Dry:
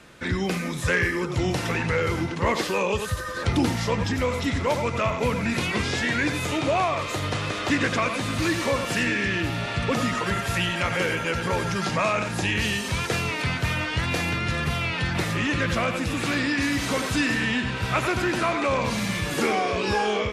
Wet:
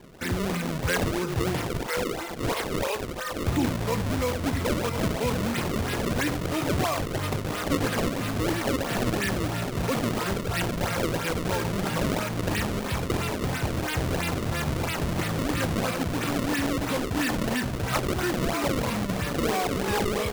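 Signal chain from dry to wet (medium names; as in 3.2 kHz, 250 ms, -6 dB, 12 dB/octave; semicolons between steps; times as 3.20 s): 1.68–3.34 s: high-pass 450 Hz 24 dB/octave; in parallel at -0.5 dB: peak limiter -23.5 dBFS, peak gain reduction 11 dB; on the sum: decimation with a swept rate 31×, swing 160% 3 Hz; trim -5 dB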